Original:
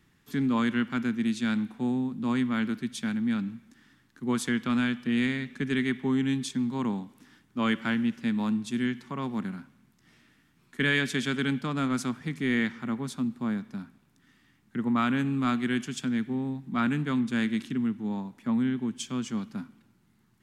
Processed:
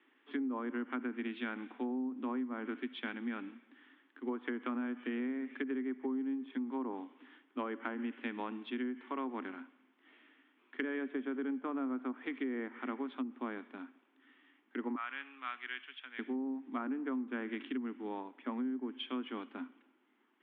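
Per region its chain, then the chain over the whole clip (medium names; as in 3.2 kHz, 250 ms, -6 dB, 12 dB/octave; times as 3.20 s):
14.95–16.19 s: Bessel high-pass 1.9 kHz + distance through air 260 m
whole clip: Chebyshev band-pass 260–3300 Hz, order 5; low-pass that closes with the level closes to 1 kHz, closed at -28 dBFS; compression, threshold -34 dBFS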